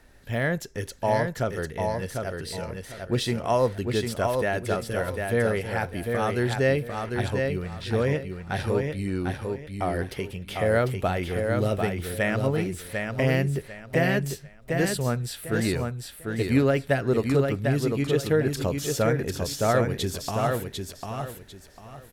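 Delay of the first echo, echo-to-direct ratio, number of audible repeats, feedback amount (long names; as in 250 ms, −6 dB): 748 ms, −4.0 dB, 3, 26%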